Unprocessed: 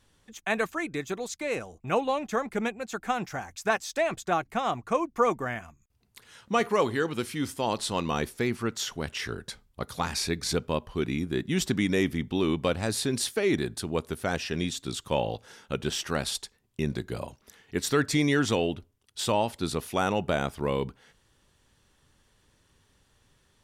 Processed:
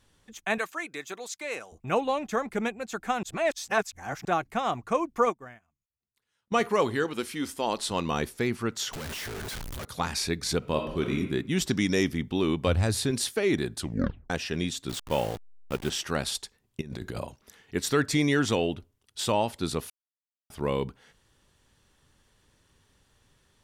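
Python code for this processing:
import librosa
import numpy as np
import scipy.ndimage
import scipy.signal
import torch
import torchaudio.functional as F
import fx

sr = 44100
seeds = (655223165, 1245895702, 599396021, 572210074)

y = fx.highpass(x, sr, hz=820.0, slope=6, at=(0.58, 1.72))
y = fx.upward_expand(y, sr, threshold_db=-40.0, expansion=2.5, at=(5.25, 6.52))
y = fx.peak_eq(y, sr, hz=120.0, db=-12.5, octaves=0.77, at=(7.04, 7.91))
y = fx.clip_1bit(y, sr, at=(8.93, 9.85))
y = fx.reverb_throw(y, sr, start_s=10.58, length_s=0.59, rt60_s=0.89, drr_db=3.0)
y = fx.peak_eq(y, sr, hz=5400.0, db=12.0, octaves=0.51, at=(11.69, 12.12))
y = fx.peak_eq(y, sr, hz=84.0, db=14.0, octaves=0.77, at=(12.66, 13.11))
y = fx.delta_hold(y, sr, step_db=-35.5, at=(14.89, 15.9))
y = fx.over_compress(y, sr, threshold_db=-37.0, ratio=-1.0, at=(16.81, 17.21))
y = fx.edit(y, sr, fx.reverse_span(start_s=3.23, length_s=1.02),
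    fx.tape_stop(start_s=13.78, length_s=0.52),
    fx.silence(start_s=19.9, length_s=0.6), tone=tone)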